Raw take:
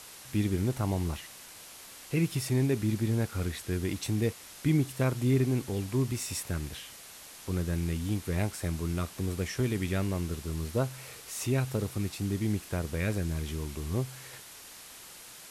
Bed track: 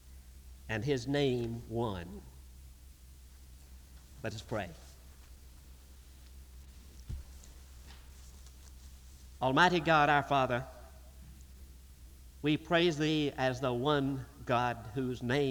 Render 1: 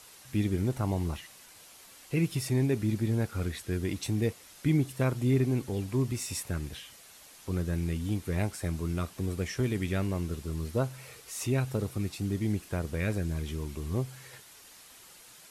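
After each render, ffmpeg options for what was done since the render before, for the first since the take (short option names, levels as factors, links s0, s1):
-af "afftdn=nr=6:nf=-49"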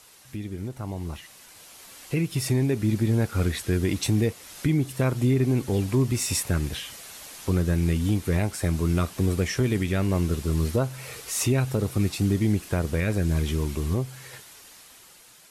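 -af "alimiter=level_in=1.12:limit=0.0631:level=0:latency=1:release=357,volume=0.891,dynaudnorm=f=560:g=7:m=3.35"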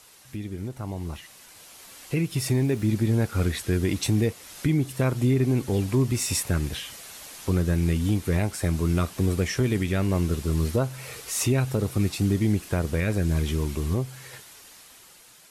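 -filter_complex "[0:a]asettb=1/sr,asplit=3[s0][s1][s2];[s0]atrim=end=2.434[s3];[s1]atrim=start=2.43:end=2.86,asetpts=PTS-STARTPTS,afade=t=in:d=0.004:c=qsin,afade=t=out:st=0.426:d=0.004:c=qsin,aeval=exprs='val(0)*gte(abs(val(0)),0.00668)':c=same[s4];[s2]atrim=start=2.856[s5];[s3][s4]acrossfade=d=0.004:c1=hsin:c2=qsin[s6];[s6][s5]acrossfade=d=0.004:c1=qsin:c2=hsin"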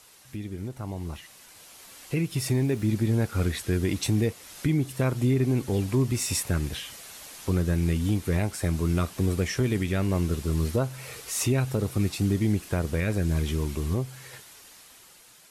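-af "volume=0.841"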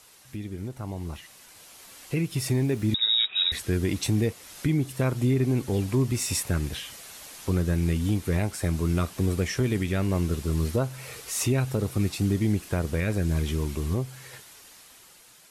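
-filter_complex "[0:a]asettb=1/sr,asplit=3[s0][s1][s2];[s0]atrim=end=2.944[s3];[s1]atrim=start=2.94:end=3.52,asetpts=PTS-STARTPTS,afade=t=in:d=0.004:c=qsin,afade=t=out:st=0.576:d=0.004:c=qsin,lowpass=f=3300:t=q:w=0.5098,lowpass=f=3300:t=q:w=0.6013,lowpass=f=3300:t=q:w=0.9,lowpass=f=3300:t=q:w=2.563,afreqshift=-3900[s4];[s2]atrim=start=3.516[s5];[s3][s4]acrossfade=d=0.004:c1=hsin:c2=qsin[s6];[s6][s5]acrossfade=d=0.004:c1=qsin:c2=hsin"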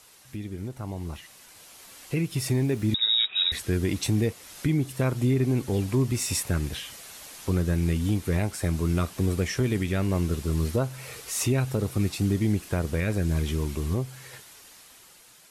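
-af anull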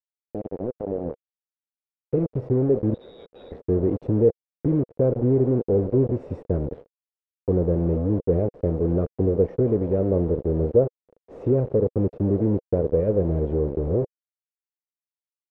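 -af "acrusher=bits=4:mix=0:aa=0.000001,lowpass=f=490:t=q:w=4.9"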